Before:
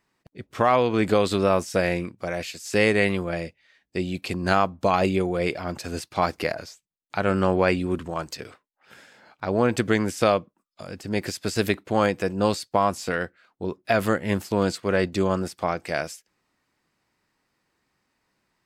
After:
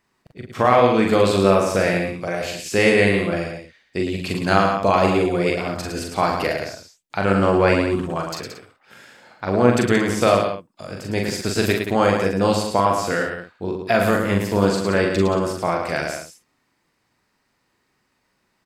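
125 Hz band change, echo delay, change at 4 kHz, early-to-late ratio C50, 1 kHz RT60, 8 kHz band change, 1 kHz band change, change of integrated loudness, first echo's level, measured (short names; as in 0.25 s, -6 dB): +5.0 dB, 41 ms, +5.0 dB, none, none, +5.0 dB, +5.0 dB, +5.0 dB, -3.5 dB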